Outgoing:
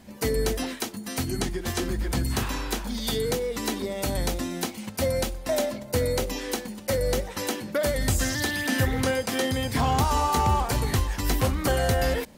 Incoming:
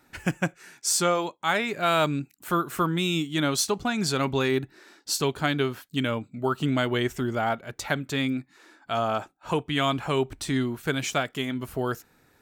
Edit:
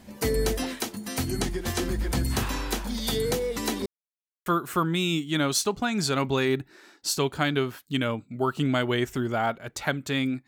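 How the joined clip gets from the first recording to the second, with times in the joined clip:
outgoing
3.86–4.46 mute
4.46 switch to incoming from 2.49 s

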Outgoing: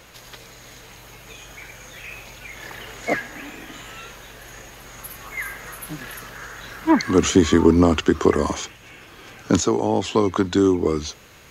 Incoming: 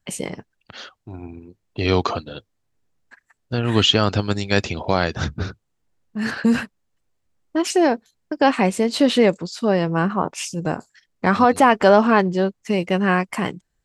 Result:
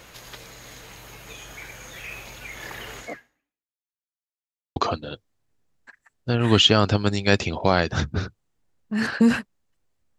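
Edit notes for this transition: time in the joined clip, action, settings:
outgoing
2.99–3.93 fade out exponential
3.93–4.76 mute
4.76 switch to incoming from 2 s

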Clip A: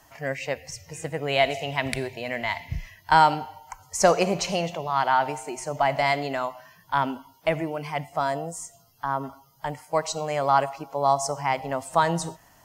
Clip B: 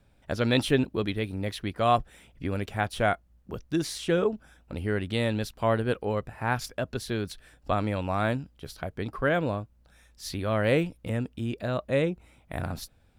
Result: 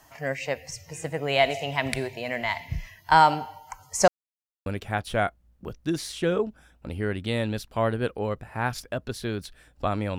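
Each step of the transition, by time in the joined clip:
clip A
4.08–4.66 mute
4.66 switch to clip B from 2.52 s

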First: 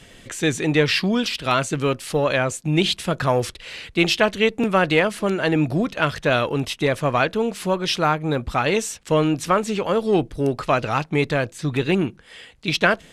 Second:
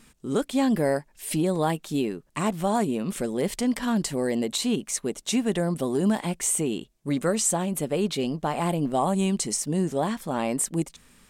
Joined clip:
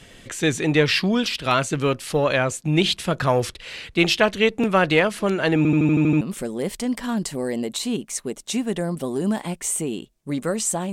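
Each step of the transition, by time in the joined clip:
first
5.57 stutter in place 0.08 s, 8 plays
6.21 switch to second from 3 s

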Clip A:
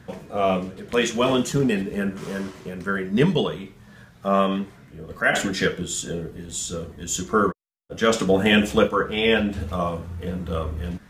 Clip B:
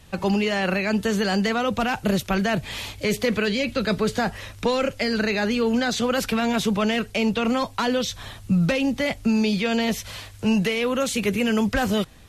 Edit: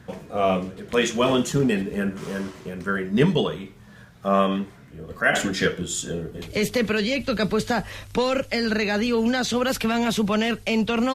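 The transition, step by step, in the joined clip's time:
clip A
6.11–6.42 echo throw 0.23 s, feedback 55%, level -10 dB
6.42 switch to clip B from 2.9 s

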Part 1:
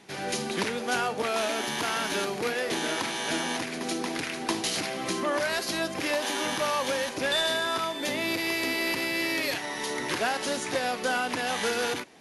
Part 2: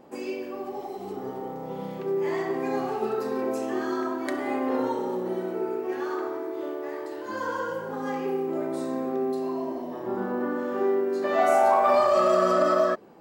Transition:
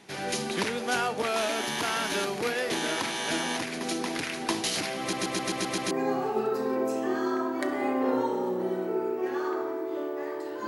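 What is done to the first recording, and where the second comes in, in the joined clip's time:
part 1
5 stutter in place 0.13 s, 7 plays
5.91 switch to part 2 from 2.57 s

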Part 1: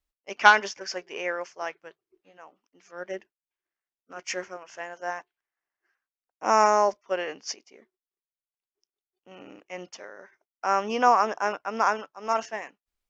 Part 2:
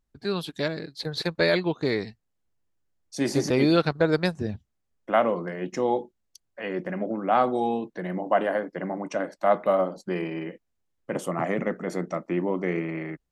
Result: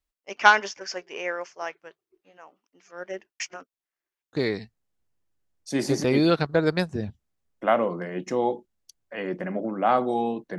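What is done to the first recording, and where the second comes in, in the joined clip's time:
part 1
3.4–4.33 reverse
4.33 switch to part 2 from 1.79 s

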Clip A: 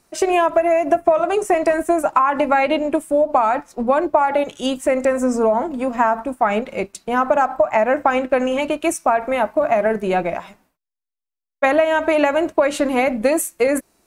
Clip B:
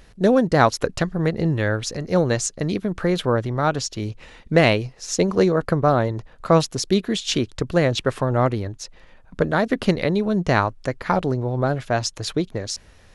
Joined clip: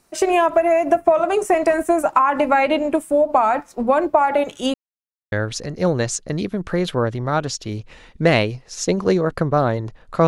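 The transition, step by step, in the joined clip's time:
clip A
4.74–5.32 mute
5.32 switch to clip B from 1.63 s

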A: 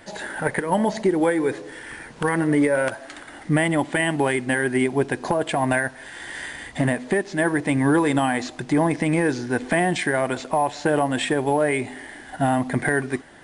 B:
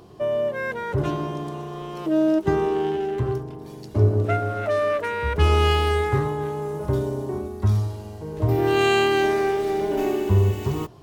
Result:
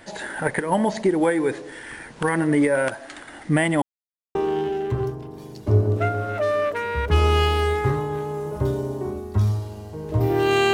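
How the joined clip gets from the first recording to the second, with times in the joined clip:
A
3.82–4.35 mute
4.35 switch to B from 2.63 s

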